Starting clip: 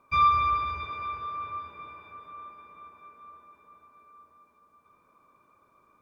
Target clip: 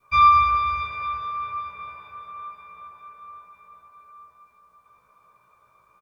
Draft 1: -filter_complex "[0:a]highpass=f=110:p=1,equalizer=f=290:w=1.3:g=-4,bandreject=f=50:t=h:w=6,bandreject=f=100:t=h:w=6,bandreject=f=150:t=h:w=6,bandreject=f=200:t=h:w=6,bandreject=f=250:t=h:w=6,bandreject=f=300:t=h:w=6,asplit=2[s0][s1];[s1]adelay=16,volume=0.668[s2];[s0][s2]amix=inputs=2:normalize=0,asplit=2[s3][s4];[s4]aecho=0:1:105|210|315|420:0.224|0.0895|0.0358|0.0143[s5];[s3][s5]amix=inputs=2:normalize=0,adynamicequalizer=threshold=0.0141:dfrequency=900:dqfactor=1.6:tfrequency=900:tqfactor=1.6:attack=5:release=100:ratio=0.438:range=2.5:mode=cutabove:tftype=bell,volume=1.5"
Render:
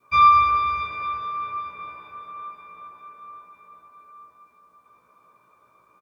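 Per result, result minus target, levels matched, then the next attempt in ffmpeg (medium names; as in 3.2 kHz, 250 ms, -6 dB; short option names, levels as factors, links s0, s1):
125 Hz band -4.0 dB; 250 Hz band +3.5 dB
-filter_complex "[0:a]equalizer=f=290:w=1.3:g=-4,bandreject=f=50:t=h:w=6,bandreject=f=100:t=h:w=6,bandreject=f=150:t=h:w=6,bandreject=f=200:t=h:w=6,bandreject=f=250:t=h:w=6,bandreject=f=300:t=h:w=6,asplit=2[s0][s1];[s1]adelay=16,volume=0.668[s2];[s0][s2]amix=inputs=2:normalize=0,asplit=2[s3][s4];[s4]aecho=0:1:105|210|315|420:0.224|0.0895|0.0358|0.0143[s5];[s3][s5]amix=inputs=2:normalize=0,adynamicequalizer=threshold=0.0141:dfrequency=900:dqfactor=1.6:tfrequency=900:tqfactor=1.6:attack=5:release=100:ratio=0.438:range=2.5:mode=cutabove:tftype=bell,volume=1.5"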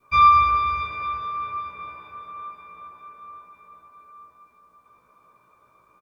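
250 Hz band +4.5 dB
-filter_complex "[0:a]equalizer=f=290:w=1.3:g=-14,bandreject=f=50:t=h:w=6,bandreject=f=100:t=h:w=6,bandreject=f=150:t=h:w=6,bandreject=f=200:t=h:w=6,bandreject=f=250:t=h:w=6,bandreject=f=300:t=h:w=6,asplit=2[s0][s1];[s1]adelay=16,volume=0.668[s2];[s0][s2]amix=inputs=2:normalize=0,asplit=2[s3][s4];[s4]aecho=0:1:105|210|315|420:0.224|0.0895|0.0358|0.0143[s5];[s3][s5]amix=inputs=2:normalize=0,adynamicequalizer=threshold=0.0141:dfrequency=900:dqfactor=1.6:tfrequency=900:tqfactor=1.6:attack=5:release=100:ratio=0.438:range=2.5:mode=cutabove:tftype=bell,volume=1.5"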